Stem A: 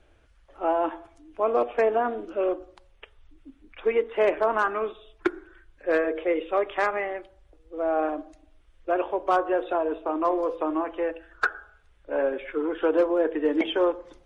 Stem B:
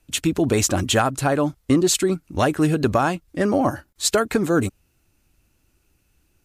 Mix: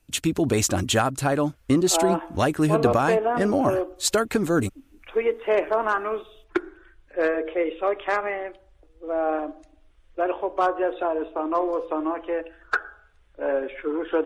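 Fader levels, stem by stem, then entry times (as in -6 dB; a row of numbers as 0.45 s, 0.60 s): +0.5 dB, -2.5 dB; 1.30 s, 0.00 s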